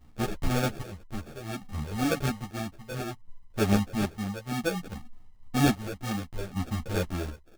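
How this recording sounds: phasing stages 4, 2 Hz, lowest notch 260–3500 Hz; aliases and images of a low sample rate 1 kHz, jitter 0%; chopped level 0.61 Hz, depth 60%, duty 50%; a shimmering, thickened sound

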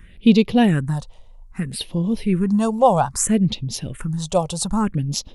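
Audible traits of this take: phasing stages 4, 0.62 Hz, lowest notch 270–1600 Hz

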